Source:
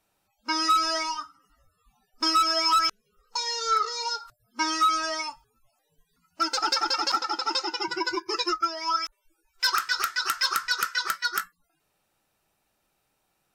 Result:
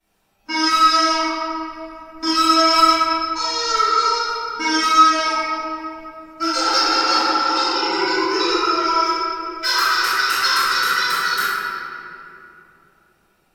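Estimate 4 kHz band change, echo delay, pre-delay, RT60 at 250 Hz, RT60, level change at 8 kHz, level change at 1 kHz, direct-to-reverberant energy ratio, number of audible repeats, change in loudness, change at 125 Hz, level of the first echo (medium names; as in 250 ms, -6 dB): +7.5 dB, no echo, 3 ms, 4.0 s, 2.9 s, +6.0 dB, +10.0 dB, -22.5 dB, no echo, +8.5 dB, no reading, no echo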